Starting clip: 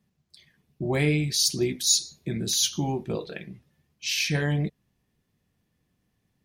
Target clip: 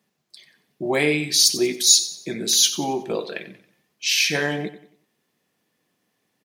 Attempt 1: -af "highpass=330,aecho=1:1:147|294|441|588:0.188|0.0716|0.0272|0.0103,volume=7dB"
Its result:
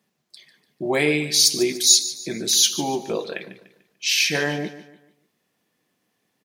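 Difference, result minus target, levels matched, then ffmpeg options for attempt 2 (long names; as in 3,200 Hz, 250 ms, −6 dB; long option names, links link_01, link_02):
echo 55 ms late
-af "highpass=330,aecho=1:1:92|184|276|368:0.188|0.0716|0.0272|0.0103,volume=7dB"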